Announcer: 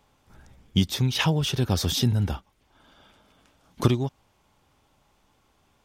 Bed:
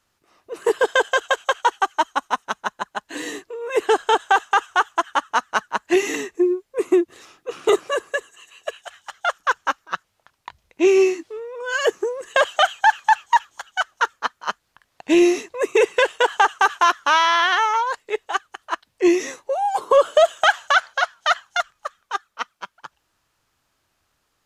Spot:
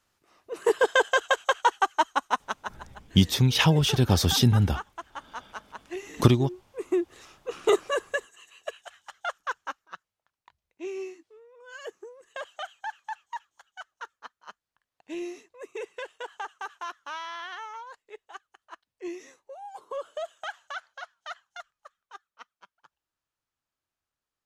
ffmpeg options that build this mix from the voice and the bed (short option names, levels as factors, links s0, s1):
-filter_complex "[0:a]adelay=2400,volume=1.33[s0];[1:a]volume=3.55,afade=t=out:st=2.35:d=0.5:silence=0.16788,afade=t=in:st=6.65:d=0.6:silence=0.188365,afade=t=out:st=8.06:d=2.13:silence=0.158489[s1];[s0][s1]amix=inputs=2:normalize=0"